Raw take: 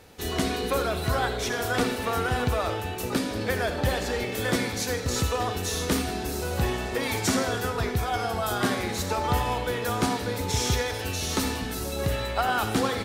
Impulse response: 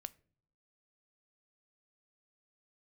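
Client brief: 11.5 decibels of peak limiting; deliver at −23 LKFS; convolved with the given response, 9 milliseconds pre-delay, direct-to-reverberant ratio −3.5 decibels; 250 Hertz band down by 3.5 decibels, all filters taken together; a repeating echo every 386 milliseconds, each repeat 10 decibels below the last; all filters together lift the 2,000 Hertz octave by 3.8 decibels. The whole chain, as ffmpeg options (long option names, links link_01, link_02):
-filter_complex "[0:a]equalizer=frequency=250:width_type=o:gain=-4.5,equalizer=frequency=2000:width_type=o:gain=5,alimiter=limit=-22.5dB:level=0:latency=1,aecho=1:1:386|772|1158|1544:0.316|0.101|0.0324|0.0104,asplit=2[link_01][link_02];[1:a]atrim=start_sample=2205,adelay=9[link_03];[link_02][link_03]afir=irnorm=-1:irlink=0,volume=8dB[link_04];[link_01][link_04]amix=inputs=2:normalize=0,volume=2.5dB"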